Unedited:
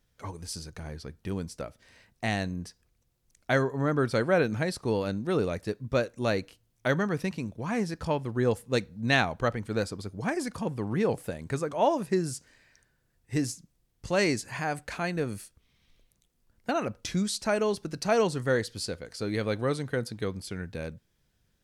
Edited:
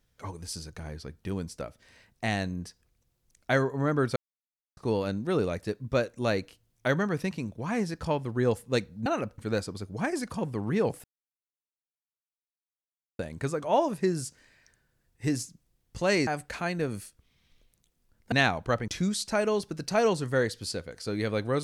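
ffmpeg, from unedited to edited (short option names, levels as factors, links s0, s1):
-filter_complex "[0:a]asplit=9[s0][s1][s2][s3][s4][s5][s6][s7][s8];[s0]atrim=end=4.16,asetpts=PTS-STARTPTS,afade=t=out:st=4.156:d=0.004:c=hsin[s9];[s1]atrim=start=4.16:end=4.77,asetpts=PTS-STARTPTS,volume=0[s10];[s2]atrim=start=4.77:end=9.062,asetpts=PTS-STARTPTS,afade=t=in:d=0.004:c=hsin[s11];[s3]atrim=start=16.698:end=17.022[s12];[s4]atrim=start=9.618:end=11.28,asetpts=PTS-STARTPTS,afade=t=out:st=1.658:d=0.004:c=hsin,apad=pad_dur=2.15[s13];[s5]atrim=start=11.28:end=14.362,asetpts=PTS-STARTPTS,afade=t=in:d=0.004:c=hsin[s14];[s6]atrim=start=14.648:end=16.702[s15];[s7]atrim=start=9.058:end=9.622[s16];[s8]atrim=start=17.018[s17];[s9][s10][s11]concat=n=3:v=0:a=1[s18];[s18][s12]acrossfade=d=0.004:c1=hsin:c2=hsin[s19];[s13][s14]concat=n=2:v=0:a=1[s20];[s19][s20]acrossfade=d=0.004:c1=hsin:c2=hsin[s21];[s21][s15]acrossfade=d=0.004:c1=hsin:c2=hsin[s22];[s22][s16]acrossfade=d=0.004:c1=hsin:c2=hsin[s23];[s23][s17]acrossfade=d=0.004:c1=hsin:c2=hsin"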